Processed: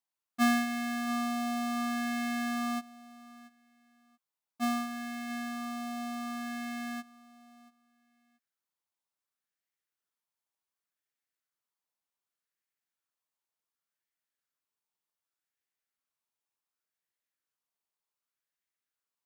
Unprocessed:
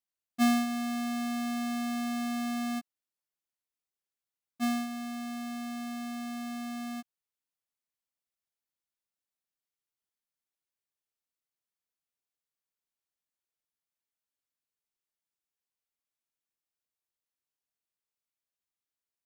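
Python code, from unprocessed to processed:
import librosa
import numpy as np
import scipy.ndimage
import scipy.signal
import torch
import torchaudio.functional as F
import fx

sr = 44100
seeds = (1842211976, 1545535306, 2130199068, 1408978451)

y = fx.low_shelf(x, sr, hz=75.0, db=-11.5)
y = fx.echo_feedback(y, sr, ms=682, feedback_pct=24, wet_db=-20.5)
y = fx.bell_lfo(y, sr, hz=0.67, low_hz=890.0, high_hz=1900.0, db=8)
y = y * librosa.db_to_amplitude(-1.0)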